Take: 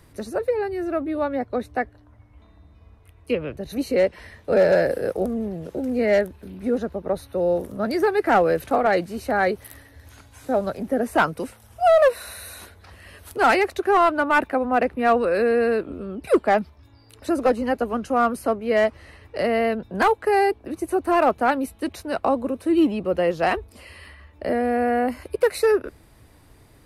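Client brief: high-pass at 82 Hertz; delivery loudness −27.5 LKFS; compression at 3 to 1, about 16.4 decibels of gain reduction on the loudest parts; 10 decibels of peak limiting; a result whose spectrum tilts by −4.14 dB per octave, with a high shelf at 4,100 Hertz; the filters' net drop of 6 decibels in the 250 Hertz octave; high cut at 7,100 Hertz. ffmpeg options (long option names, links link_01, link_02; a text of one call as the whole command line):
ffmpeg -i in.wav -af "highpass=82,lowpass=7100,equalizer=frequency=250:width_type=o:gain=-8,highshelf=frequency=4100:gain=7,acompressor=threshold=-37dB:ratio=3,volume=13dB,alimiter=limit=-18dB:level=0:latency=1" out.wav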